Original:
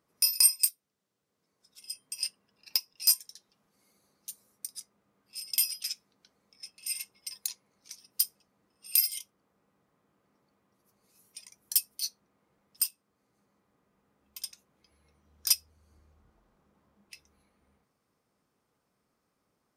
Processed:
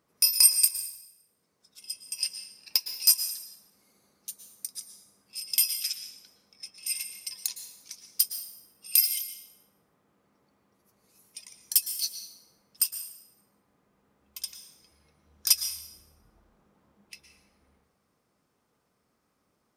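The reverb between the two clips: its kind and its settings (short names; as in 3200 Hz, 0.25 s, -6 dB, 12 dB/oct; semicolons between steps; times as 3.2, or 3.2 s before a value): plate-style reverb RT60 0.85 s, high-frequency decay 0.9×, pre-delay 0.1 s, DRR 8.5 dB; gain +3 dB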